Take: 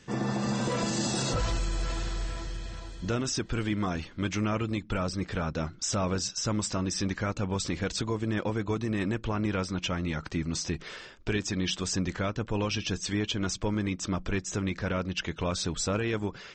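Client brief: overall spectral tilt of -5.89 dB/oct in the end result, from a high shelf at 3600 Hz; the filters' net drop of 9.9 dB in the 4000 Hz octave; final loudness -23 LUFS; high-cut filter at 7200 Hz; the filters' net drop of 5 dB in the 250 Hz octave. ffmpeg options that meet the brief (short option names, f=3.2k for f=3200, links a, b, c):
-af "lowpass=7.2k,equalizer=f=250:t=o:g=-7,highshelf=f=3.6k:g=-7.5,equalizer=f=4k:t=o:g=-7.5,volume=11.5dB"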